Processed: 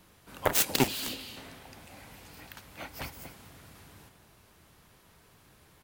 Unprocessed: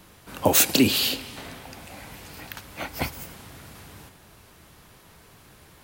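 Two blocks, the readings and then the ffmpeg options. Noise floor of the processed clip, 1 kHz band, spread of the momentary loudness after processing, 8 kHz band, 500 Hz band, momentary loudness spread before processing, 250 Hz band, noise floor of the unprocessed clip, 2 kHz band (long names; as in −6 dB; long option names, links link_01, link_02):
−61 dBFS, −5.0 dB, 23 LU, −8.0 dB, −7.0 dB, 23 LU, −10.5 dB, −53 dBFS, −6.5 dB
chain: -filter_complex "[0:a]asplit=2[link_01][link_02];[link_02]adelay=239.1,volume=-12dB,highshelf=frequency=4000:gain=-5.38[link_03];[link_01][link_03]amix=inputs=2:normalize=0,aeval=exprs='0.631*(cos(1*acos(clip(val(0)/0.631,-1,1)))-cos(1*PI/2))+0.1*(cos(3*acos(clip(val(0)/0.631,-1,1)))-cos(3*PI/2))+0.1*(cos(7*acos(clip(val(0)/0.631,-1,1)))-cos(7*PI/2))':channel_layout=same,volume=-3.5dB"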